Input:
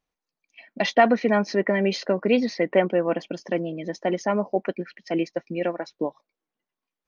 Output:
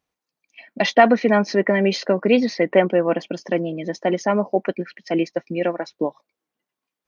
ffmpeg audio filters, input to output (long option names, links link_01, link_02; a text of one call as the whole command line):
ffmpeg -i in.wav -af "highpass=61,volume=4dB" out.wav